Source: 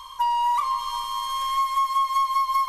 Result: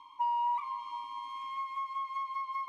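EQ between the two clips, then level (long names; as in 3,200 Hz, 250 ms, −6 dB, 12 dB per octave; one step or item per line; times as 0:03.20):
formant filter u
+2.5 dB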